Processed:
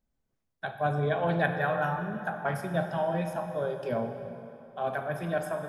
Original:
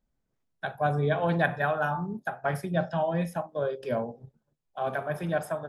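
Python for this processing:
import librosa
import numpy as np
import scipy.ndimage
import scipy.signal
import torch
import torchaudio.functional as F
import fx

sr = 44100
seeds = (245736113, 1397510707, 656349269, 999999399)

y = fx.rev_plate(x, sr, seeds[0], rt60_s=3.2, hf_ratio=0.75, predelay_ms=0, drr_db=6.0)
y = y * 10.0 ** (-2.0 / 20.0)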